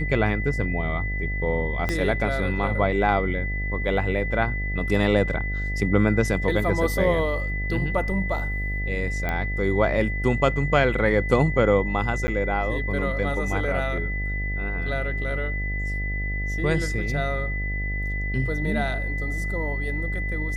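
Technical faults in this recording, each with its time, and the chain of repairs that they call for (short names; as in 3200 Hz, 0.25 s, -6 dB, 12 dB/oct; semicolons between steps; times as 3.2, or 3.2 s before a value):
buzz 50 Hz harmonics 16 -28 dBFS
tone 2000 Hz -30 dBFS
1.89 pop -12 dBFS
9.29 pop -14 dBFS
12.27–12.28 gap 10 ms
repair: de-click; notch 2000 Hz, Q 30; de-hum 50 Hz, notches 16; interpolate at 12.27, 10 ms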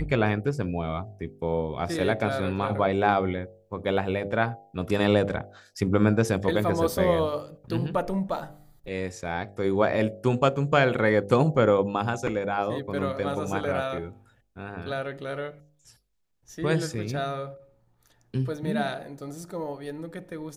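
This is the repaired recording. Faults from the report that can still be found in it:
1.89 pop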